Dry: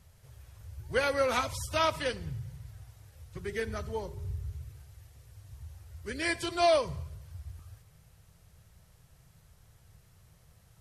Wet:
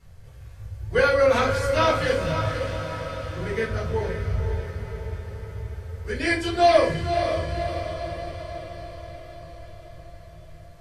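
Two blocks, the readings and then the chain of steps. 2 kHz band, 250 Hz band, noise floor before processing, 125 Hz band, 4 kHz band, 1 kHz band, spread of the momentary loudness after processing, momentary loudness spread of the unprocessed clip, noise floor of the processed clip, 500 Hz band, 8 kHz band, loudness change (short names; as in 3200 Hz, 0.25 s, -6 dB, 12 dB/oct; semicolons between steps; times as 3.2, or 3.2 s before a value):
+8.5 dB, +10.5 dB, -61 dBFS, +11.5 dB, +5.5 dB, +8.5 dB, 21 LU, 21 LU, -45 dBFS, +10.0 dB, +2.0 dB, +7.0 dB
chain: high shelf 7100 Hz -9.5 dB; diffused feedback echo 0.522 s, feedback 60%, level -7 dB; shoebox room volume 150 m³, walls furnished, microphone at 4.1 m; gain -1.5 dB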